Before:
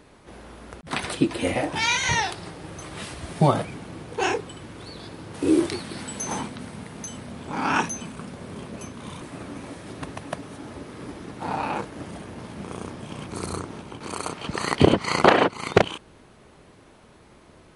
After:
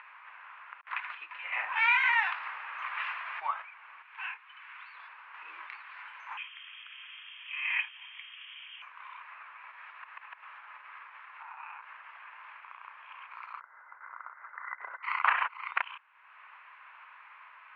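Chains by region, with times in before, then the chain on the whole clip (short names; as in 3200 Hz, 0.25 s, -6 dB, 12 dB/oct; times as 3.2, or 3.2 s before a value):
1.52–3.47 HPF 55 Hz + low shelf 380 Hz +3.5 dB + fast leveller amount 50%
4.02–4.95 band-pass 4600 Hz, Q 0.53 + air absorption 100 m
6.37–8.82 high shelf 2400 Hz -11.5 dB + inverted band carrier 3400 Hz
9.71–12.84 low shelf 130 Hz -11.5 dB + compressor 4:1, threshold -38 dBFS
13.6–15.03 rippled Chebyshev low-pass 2100 Hz, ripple 9 dB + short-mantissa float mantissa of 4-bit
whole clip: upward compressor, threshold -27 dBFS; elliptic band-pass 1000–2600 Hz, stop band 70 dB; gain -4.5 dB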